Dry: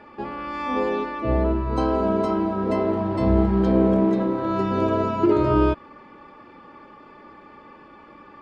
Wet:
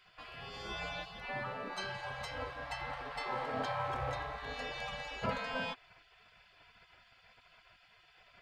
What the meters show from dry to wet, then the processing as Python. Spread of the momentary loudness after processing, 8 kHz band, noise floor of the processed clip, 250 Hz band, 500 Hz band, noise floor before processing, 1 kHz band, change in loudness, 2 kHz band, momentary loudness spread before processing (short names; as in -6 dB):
6 LU, n/a, -65 dBFS, -29.0 dB, -20.5 dB, -47 dBFS, -12.5 dB, -17.5 dB, -3.0 dB, 8 LU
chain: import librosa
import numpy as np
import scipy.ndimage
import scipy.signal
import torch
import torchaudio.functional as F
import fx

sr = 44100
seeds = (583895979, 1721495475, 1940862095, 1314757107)

y = fx.spec_gate(x, sr, threshold_db=-20, keep='weak')